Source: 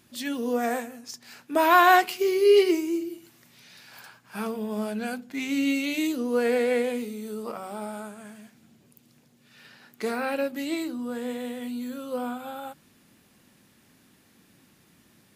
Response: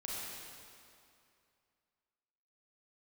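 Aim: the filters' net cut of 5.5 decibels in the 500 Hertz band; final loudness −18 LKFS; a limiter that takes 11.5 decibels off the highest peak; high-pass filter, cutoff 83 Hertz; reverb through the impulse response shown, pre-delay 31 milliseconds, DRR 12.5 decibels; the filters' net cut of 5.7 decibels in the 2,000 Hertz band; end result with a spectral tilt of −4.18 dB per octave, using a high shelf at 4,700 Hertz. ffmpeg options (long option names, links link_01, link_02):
-filter_complex "[0:a]highpass=83,equalizer=frequency=500:width_type=o:gain=-7,equalizer=frequency=2000:width_type=o:gain=-7,highshelf=frequency=4700:gain=-4,alimiter=limit=-22dB:level=0:latency=1,asplit=2[link_01][link_02];[1:a]atrim=start_sample=2205,adelay=31[link_03];[link_02][link_03]afir=irnorm=-1:irlink=0,volume=-13.5dB[link_04];[link_01][link_04]amix=inputs=2:normalize=0,volume=15dB"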